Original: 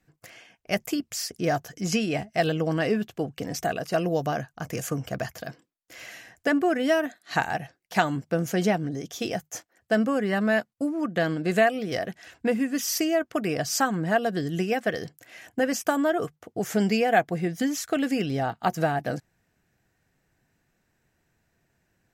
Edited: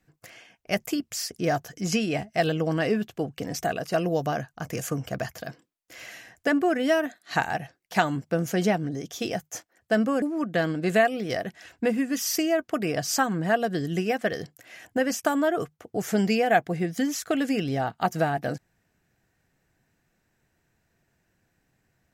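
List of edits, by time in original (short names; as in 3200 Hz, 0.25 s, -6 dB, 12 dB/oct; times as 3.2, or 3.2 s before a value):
10.22–10.84 cut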